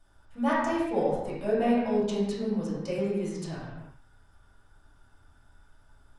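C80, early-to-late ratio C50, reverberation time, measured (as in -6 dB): 2.5 dB, -0.5 dB, no single decay rate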